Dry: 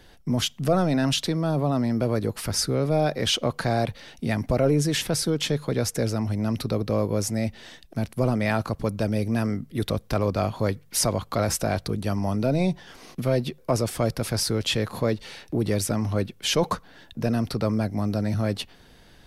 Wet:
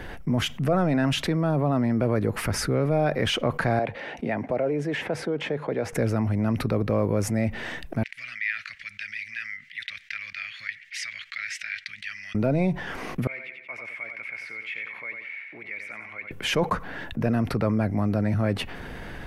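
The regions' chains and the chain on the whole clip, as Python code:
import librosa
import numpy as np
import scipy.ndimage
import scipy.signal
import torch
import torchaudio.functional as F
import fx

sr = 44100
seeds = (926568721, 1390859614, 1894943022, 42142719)

y = fx.chain(x, sr, fx.bandpass_q(hz=860.0, q=0.84),
    fx.peak_eq(hz=1200.0, db=-9.0, octaves=0.84),
    fx.band_squash(depth_pct=40), at=(3.79, 5.93))
y = fx.chain(y, sr, fx.ellip_highpass(hz=1900.0, order=4, stop_db=50),
    fx.air_absorb(metres=150.0), at=(8.03, 12.35))
y = fx.chain(y, sr, fx.bandpass_q(hz=2200.0, q=17.0),
    fx.echo_feedback(ms=90, feedback_pct=34, wet_db=-9), at=(13.27, 16.31))
y = fx.high_shelf_res(y, sr, hz=3000.0, db=-10.0, q=1.5)
y = fx.env_flatten(y, sr, amount_pct=50)
y = y * 10.0 ** (-2.5 / 20.0)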